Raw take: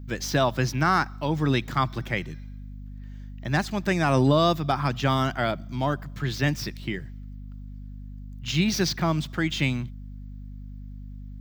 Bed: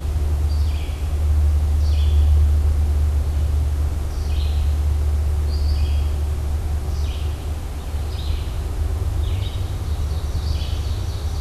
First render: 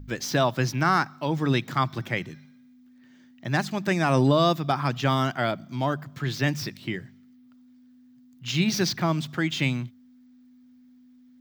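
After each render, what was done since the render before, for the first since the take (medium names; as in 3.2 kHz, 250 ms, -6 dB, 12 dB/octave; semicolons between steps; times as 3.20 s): de-hum 50 Hz, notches 4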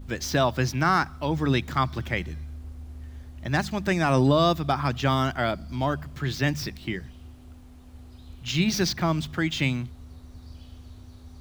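add bed -22 dB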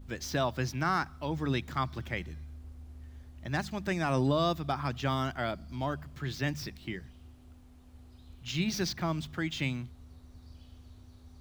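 trim -7.5 dB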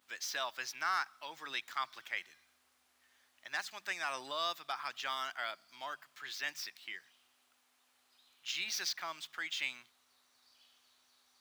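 high-pass 1.3 kHz 12 dB/octave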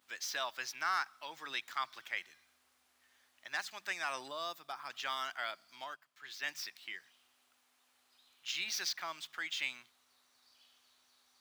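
4.28–4.90 s: peaking EQ 2.6 kHz -7.5 dB 2.8 oct; 5.84–6.48 s: upward expansion, over -60 dBFS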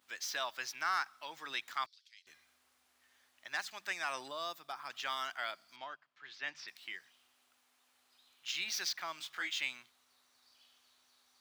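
1.86–2.27 s: ladder band-pass 5 kHz, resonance 60%; 5.76–6.68 s: distance through air 150 m; 9.18–9.59 s: doubling 22 ms -3 dB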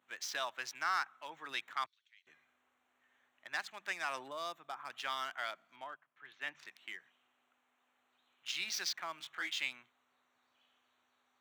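local Wiener filter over 9 samples; high-pass 96 Hz 24 dB/octave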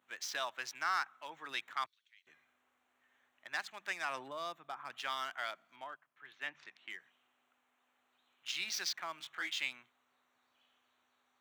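4.05–4.97 s: tone controls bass +4 dB, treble -4 dB; 6.47–6.90 s: distance through air 93 m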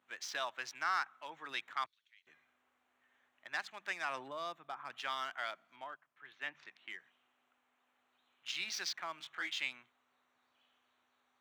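treble shelf 8.1 kHz -8.5 dB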